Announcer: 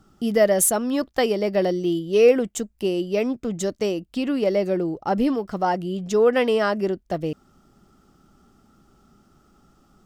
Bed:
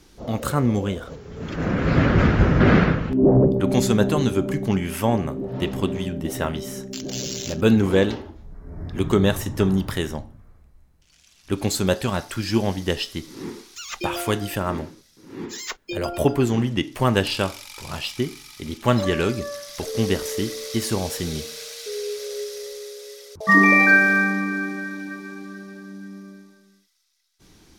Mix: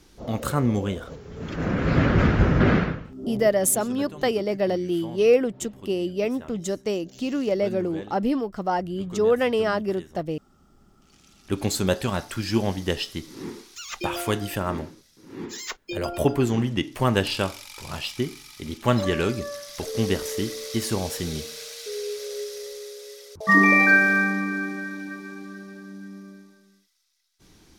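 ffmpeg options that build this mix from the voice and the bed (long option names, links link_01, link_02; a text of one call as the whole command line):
ffmpeg -i stem1.wav -i stem2.wav -filter_complex "[0:a]adelay=3050,volume=-2.5dB[link_01];[1:a]volume=15.5dB,afade=type=out:start_time=2.58:duration=0.54:silence=0.133352,afade=type=in:start_time=10.56:duration=0.56:silence=0.133352[link_02];[link_01][link_02]amix=inputs=2:normalize=0" out.wav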